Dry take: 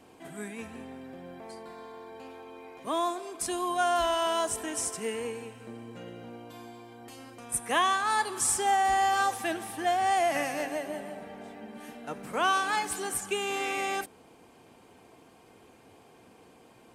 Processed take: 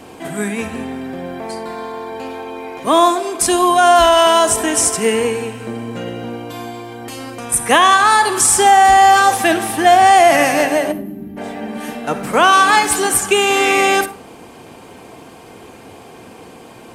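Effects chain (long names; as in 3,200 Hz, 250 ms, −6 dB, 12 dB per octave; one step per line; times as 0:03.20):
gain on a spectral selection 0:10.92–0:11.37, 410–11,000 Hz −23 dB
on a send at −13 dB: convolution reverb RT60 0.45 s, pre-delay 44 ms
on the sum: boost into a limiter +18.5 dB
level −1 dB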